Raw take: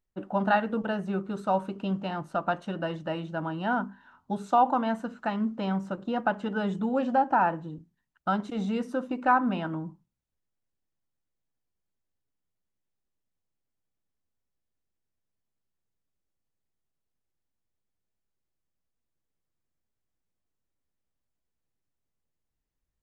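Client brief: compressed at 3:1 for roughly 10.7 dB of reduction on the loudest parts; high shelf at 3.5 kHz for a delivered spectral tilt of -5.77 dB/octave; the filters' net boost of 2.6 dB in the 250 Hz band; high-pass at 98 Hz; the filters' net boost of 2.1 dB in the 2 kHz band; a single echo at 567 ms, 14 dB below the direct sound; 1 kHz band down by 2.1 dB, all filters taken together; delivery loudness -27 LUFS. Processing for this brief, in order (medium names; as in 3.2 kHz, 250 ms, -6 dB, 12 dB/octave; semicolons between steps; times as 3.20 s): high-pass 98 Hz; peaking EQ 250 Hz +3.5 dB; peaking EQ 1 kHz -4 dB; peaking EQ 2 kHz +7.5 dB; treble shelf 3.5 kHz -8 dB; compression 3:1, threshold -34 dBFS; delay 567 ms -14 dB; trim +9.5 dB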